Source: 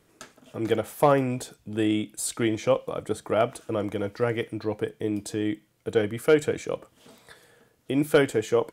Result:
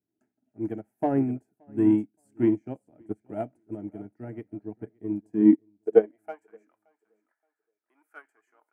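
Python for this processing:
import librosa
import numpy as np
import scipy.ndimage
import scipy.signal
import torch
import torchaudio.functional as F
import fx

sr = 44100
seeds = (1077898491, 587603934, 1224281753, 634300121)

p1 = fx.tilt_shelf(x, sr, db=10.0, hz=850.0)
p2 = fx.fixed_phaser(p1, sr, hz=750.0, stages=8)
p3 = 10.0 ** (-16.5 / 20.0) * np.tanh(p2 / 10.0 ** (-16.5 / 20.0))
p4 = p2 + (p3 * 10.0 ** (-6.0 / 20.0))
p5 = fx.filter_sweep_highpass(p4, sr, from_hz=140.0, to_hz=1200.0, start_s=5.16, end_s=6.58, q=4.6)
p6 = p5 + fx.echo_feedback(p5, sr, ms=573, feedback_pct=29, wet_db=-13.5, dry=0)
p7 = fx.upward_expand(p6, sr, threshold_db=-29.0, expansion=2.5)
y = p7 * 10.0 ** (-1.5 / 20.0)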